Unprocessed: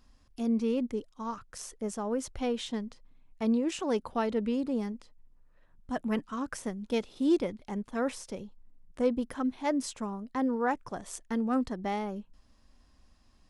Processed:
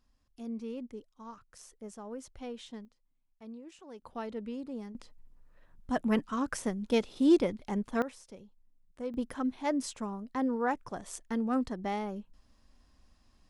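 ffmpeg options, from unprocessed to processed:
-af "asetnsamples=n=441:p=0,asendcmd='2.85 volume volume -19dB;4.02 volume volume -9dB;4.95 volume volume 2.5dB;8.02 volume volume -10.5dB;9.14 volume volume -1.5dB',volume=0.299"

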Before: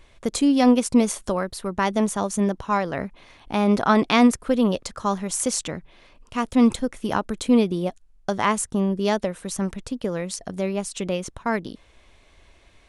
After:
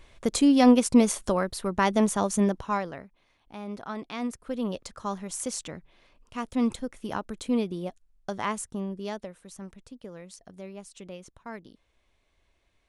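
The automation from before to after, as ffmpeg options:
-af "volume=2.66,afade=t=out:st=2.39:d=0.48:silence=0.446684,afade=t=out:st=2.87:d=0.16:silence=0.316228,afade=t=in:st=4.16:d=0.66:silence=0.334965,afade=t=out:st=8.45:d=0.99:silence=0.421697"

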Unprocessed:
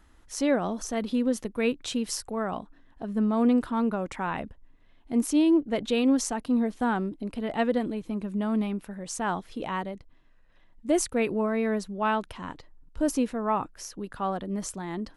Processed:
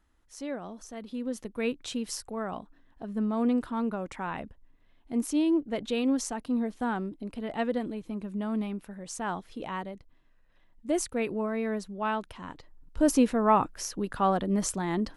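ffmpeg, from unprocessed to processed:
-af "volume=1.68,afade=t=in:st=1.06:d=0.55:silence=0.421697,afade=t=in:st=12.49:d=0.82:silence=0.375837"

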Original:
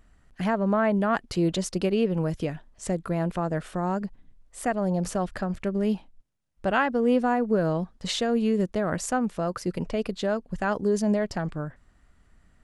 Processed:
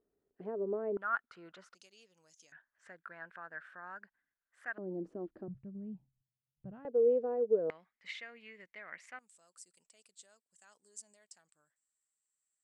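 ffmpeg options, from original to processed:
-af "asetnsamples=n=441:p=0,asendcmd='0.97 bandpass f 1400;1.75 bandpass f 6500;2.52 bandpass f 1600;4.78 bandpass f 330;5.48 bandpass f 130;6.85 bandpass f 460;7.7 bandpass f 2100;9.19 bandpass f 8000',bandpass=f=410:t=q:w=8.1:csg=0"

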